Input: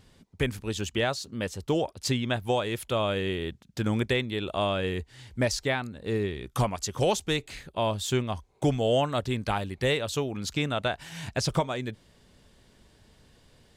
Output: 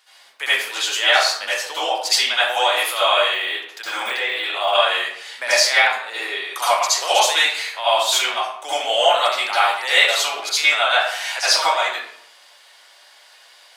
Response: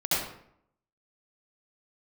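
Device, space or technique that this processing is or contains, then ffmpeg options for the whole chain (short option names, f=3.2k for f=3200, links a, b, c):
bathroom: -filter_complex "[0:a]highpass=710,equalizer=f=7.3k:t=o:w=0.34:g=-2.5[a];[1:a]atrim=start_sample=2205[b];[a][b]afir=irnorm=-1:irlink=0,asettb=1/sr,asplit=3[c][d][e];[c]atrim=end=3.344[f];[d]atrim=start=3.34:end=4.75,asetpts=PTS-STARTPTS,afade=t=in:d=0.004:c=qsin,afade=t=out:st=1.406:d=0.004:c=qsin,deesser=0.9[g];[e]atrim=start=4.746[h];[f][g]acrossfade=d=0.004:c1=hsin:c2=qsin[i];[i][h]acrossfade=d=0.004:c1=qsin:c2=hsin,highpass=860,volume=6.5dB"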